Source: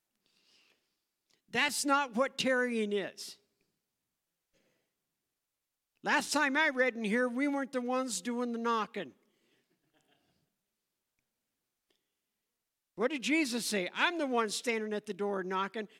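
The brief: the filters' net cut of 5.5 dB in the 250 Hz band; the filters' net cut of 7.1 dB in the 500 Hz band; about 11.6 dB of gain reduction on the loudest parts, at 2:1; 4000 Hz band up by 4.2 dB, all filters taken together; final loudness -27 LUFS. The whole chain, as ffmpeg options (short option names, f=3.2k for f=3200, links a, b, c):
-af "equalizer=f=250:t=o:g=-4.5,equalizer=f=500:t=o:g=-7,equalizer=f=4k:t=o:g=5.5,acompressor=threshold=-46dB:ratio=2,volume=15dB"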